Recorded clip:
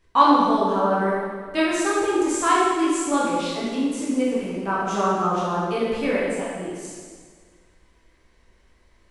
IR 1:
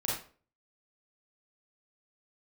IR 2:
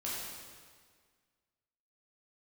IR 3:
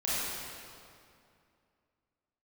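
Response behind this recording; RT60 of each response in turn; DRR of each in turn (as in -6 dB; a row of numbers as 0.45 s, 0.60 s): 2; 0.40 s, 1.8 s, 2.5 s; -6.0 dB, -7.5 dB, -10.5 dB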